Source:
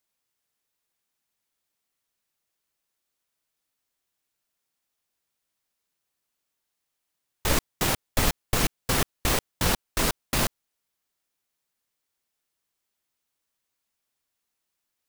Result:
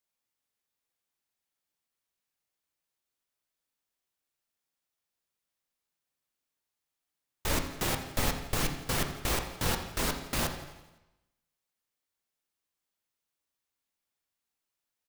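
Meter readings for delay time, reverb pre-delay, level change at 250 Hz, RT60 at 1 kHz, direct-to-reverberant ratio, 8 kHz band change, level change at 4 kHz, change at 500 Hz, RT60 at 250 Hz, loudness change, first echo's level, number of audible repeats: 85 ms, 7 ms, -5.0 dB, 1.0 s, 4.5 dB, -6.0 dB, -5.5 dB, -5.0 dB, 0.95 s, -5.5 dB, -15.5 dB, 2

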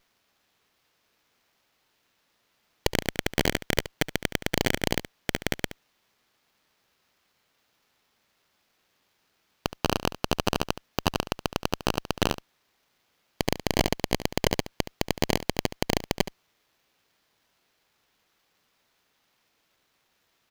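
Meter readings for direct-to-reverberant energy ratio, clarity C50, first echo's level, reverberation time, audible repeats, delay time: none, none, -14.0 dB, none, 1, 71 ms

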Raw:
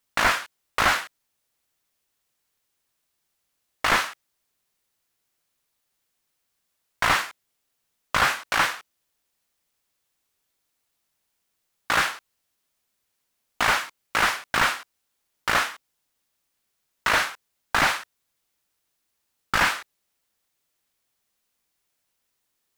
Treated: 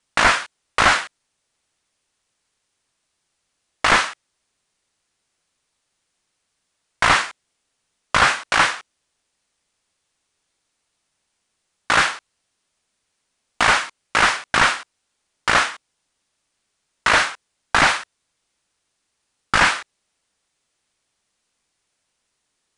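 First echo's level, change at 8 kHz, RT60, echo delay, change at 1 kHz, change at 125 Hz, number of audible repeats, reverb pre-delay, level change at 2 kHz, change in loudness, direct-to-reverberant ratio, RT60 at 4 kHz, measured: none, +5.0 dB, none, none, +5.5 dB, +5.5 dB, none, none, +5.5 dB, +5.5 dB, none, none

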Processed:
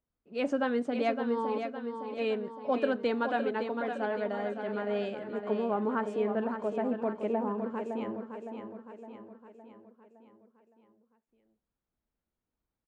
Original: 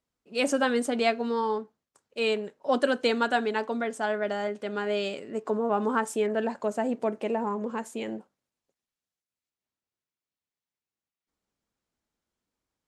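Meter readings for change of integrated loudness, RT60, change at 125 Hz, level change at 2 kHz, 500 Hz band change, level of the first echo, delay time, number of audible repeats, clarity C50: -4.0 dB, none, n/a, -7.0 dB, -3.0 dB, -7.5 dB, 0.562 s, 5, none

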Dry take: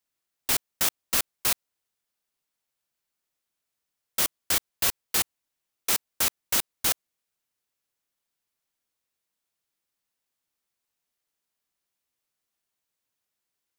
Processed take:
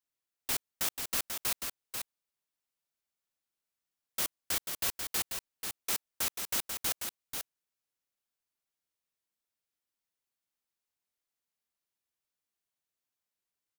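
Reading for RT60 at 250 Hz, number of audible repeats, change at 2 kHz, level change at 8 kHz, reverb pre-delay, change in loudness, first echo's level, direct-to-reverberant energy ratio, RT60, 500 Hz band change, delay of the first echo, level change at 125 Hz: none, 1, -7.0 dB, -7.0 dB, none, -8.0 dB, -6.0 dB, none, none, -7.0 dB, 0.489 s, -7.0 dB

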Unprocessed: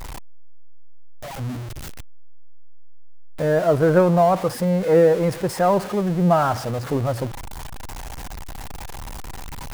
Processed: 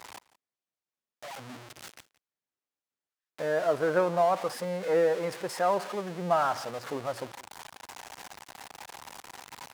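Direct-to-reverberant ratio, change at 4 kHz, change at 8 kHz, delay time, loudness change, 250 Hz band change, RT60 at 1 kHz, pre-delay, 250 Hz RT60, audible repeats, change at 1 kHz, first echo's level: none, -5.0 dB, -7.0 dB, 0.172 s, -9.0 dB, -15.5 dB, none, none, none, 1, -6.5 dB, -21.0 dB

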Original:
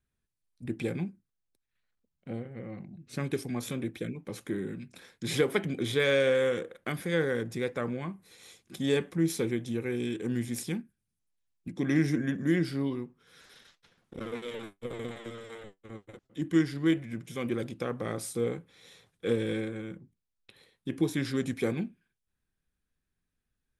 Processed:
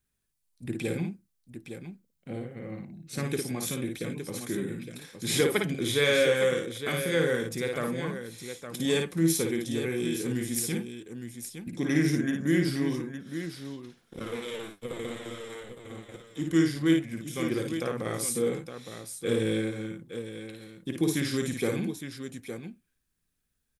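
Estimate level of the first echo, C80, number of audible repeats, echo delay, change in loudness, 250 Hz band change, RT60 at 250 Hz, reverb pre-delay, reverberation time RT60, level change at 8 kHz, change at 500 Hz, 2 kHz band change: -4.5 dB, none, 2, 55 ms, +2.0 dB, +2.0 dB, none, none, none, +9.5 dB, +2.0 dB, +3.0 dB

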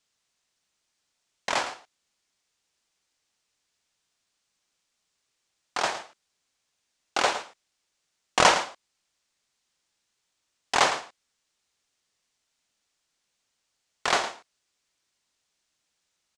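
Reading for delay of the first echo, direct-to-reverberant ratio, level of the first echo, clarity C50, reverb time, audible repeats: 0.11 s, none, -12.5 dB, none, none, 1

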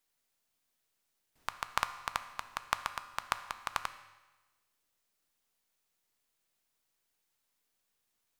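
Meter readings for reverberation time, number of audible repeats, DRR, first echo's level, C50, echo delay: 1.2 s, none, 10.5 dB, none, 13.0 dB, none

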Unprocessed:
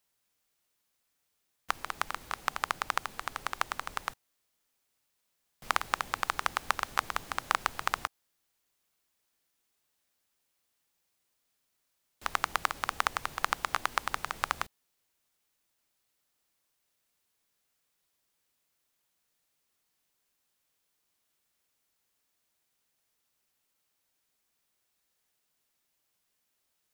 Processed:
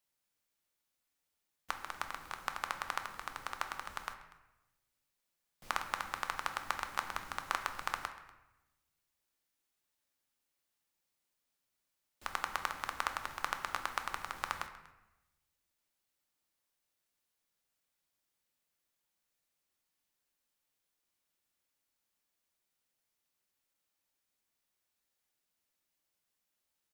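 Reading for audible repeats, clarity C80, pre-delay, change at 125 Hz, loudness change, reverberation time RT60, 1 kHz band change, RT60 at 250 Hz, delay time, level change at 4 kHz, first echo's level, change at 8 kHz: 1, 11.0 dB, 3 ms, -6.0 dB, -6.0 dB, 0.95 s, -6.0 dB, 1.2 s, 0.241 s, -6.5 dB, -21.0 dB, -6.5 dB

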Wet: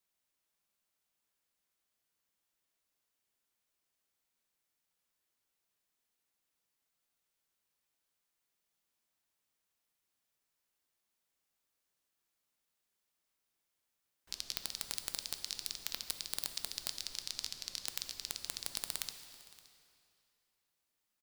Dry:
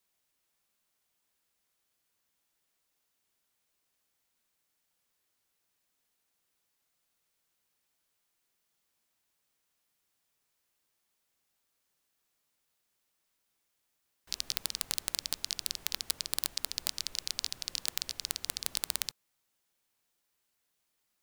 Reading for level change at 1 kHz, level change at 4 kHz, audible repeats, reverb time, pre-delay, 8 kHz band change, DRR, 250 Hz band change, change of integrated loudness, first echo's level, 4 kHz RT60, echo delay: -5.5 dB, -5.5 dB, 1, 2.6 s, 3 ms, -5.5 dB, 8.0 dB, -5.5 dB, -5.5 dB, -21.5 dB, 2.3 s, 0.57 s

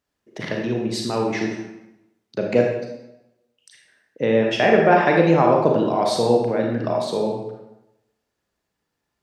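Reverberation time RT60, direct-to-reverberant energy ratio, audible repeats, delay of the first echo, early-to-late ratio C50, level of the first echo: 0.90 s, 0.0 dB, none, none, 2.5 dB, none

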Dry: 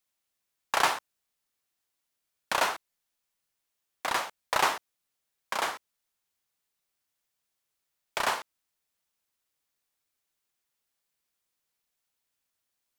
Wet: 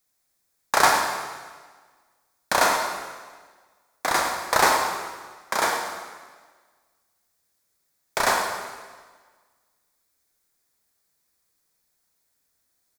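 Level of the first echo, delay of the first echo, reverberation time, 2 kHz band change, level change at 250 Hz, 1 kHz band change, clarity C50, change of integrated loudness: -11.5 dB, 0.106 s, 1.5 s, +7.5 dB, +10.5 dB, +8.0 dB, 3.5 dB, +6.5 dB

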